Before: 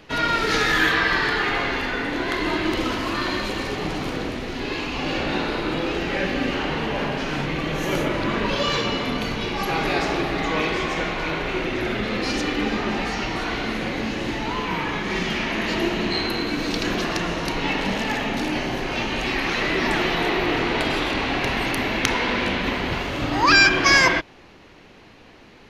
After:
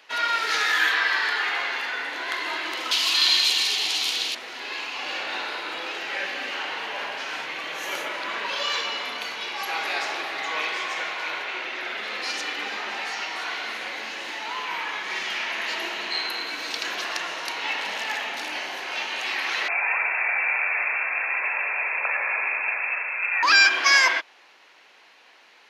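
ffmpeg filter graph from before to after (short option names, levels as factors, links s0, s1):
-filter_complex "[0:a]asettb=1/sr,asplit=3[s0][s1][s2];[s0]atrim=end=2.914[s3];[s1]atrim=start=2.91:end=4.35,asetpts=PTS-STARTPTS,afade=t=in:d=0.004:c=qsin,afade=t=out:st=1.436:d=0.004:c=qsin,highshelf=f=2400:t=q:w=1.5:g=13,bandreject=f=560:w=5[s4];[s2]atrim=start=4.346[s5];[s3][s4]acrossfade=d=0.004:c1=hsin:c2=qsin[s6];[s6][s5]acrossfade=d=0.004:c1=qsin:c2=hsin,asettb=1/sr,asplit=3[s7][s8][s9];[s7]atrim=end=11.444[s10];[s8]atrim=start=11.44:end=11.97,asetpts=PTS-STARTPTS,afade=t=in:d=0.004:c=qsin,afade=t=out:st=0.526:d=0.004:c=qsin,acrossover=split=6100[s11][s12];[s12]acompressor=threshold=0.00112:ratio=4:attack=1:release=60[s13];[s11][s13]amix=inputs=2:normalize=0,lowshelf=f=120:g=-7[s14];[s9]atrim=start=11.966[s15];[s10][s14]acrossfade=d=0.004:c1=hsin:c2=qsin[s16];[s16][s15]acrossfade=d=0.004:c1=qsin:c2=hsin,asettb=1/sr,asplit=3[s17][s18][s19];[s17]atrim=end=19.684[s20];[s18]atrim=start=19.68:end=23.43,asetpts=PTS-STARTPTS,afade=t=in:d=0.004:c=qsin,afade=t=out:st=3.746:d=0.004:c=qsin,lowpass=f=2300:t=q:w=0.5098,lowpass=f=2300:t=q:w=0.6013,lowpass=f=2300:t=q:w=0.9,lowpass=f=2300:t=q:w=2.563,afreqshift=-2700,aeval=exprs='val(0)+0.00631*(sin(2*PI*60*n/s)+sin(2*PI*2*60*n/s)/2+sin(2*PI*3*60*n/s)/3+sin(2*PI*4*60*n/s)/4+sin(2*PI*5*60*n/s)/5)':c=same[s21];[s19]atrim=start=23.426[s22];[s20][s21]acrossfade=d=0.004:c1=hsin:c2=qsin[s23];[s23][s22]acrossfade=d=0.004:c1=qsin:c2=hsin,highpass=890,bandreject=f=1200:w=22,volume=0.891"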